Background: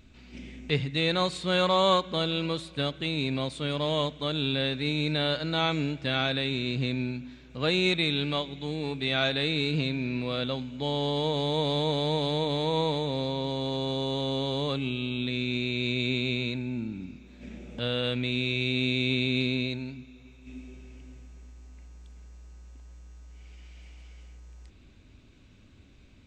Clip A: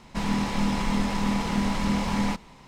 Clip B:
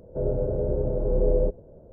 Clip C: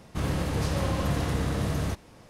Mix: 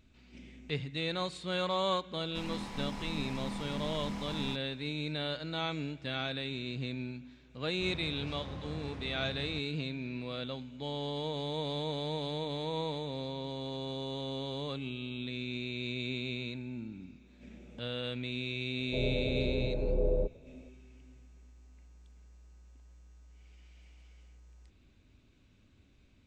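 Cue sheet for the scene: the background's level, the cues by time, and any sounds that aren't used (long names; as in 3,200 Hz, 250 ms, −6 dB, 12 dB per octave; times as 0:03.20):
background −8.5 dB
0:02.20: mix in A −14 dB
0:07.65: mix in C −15.5 dB + high-frequency loss of the air 120 metres
0:18.77: mix in B −7.5 dB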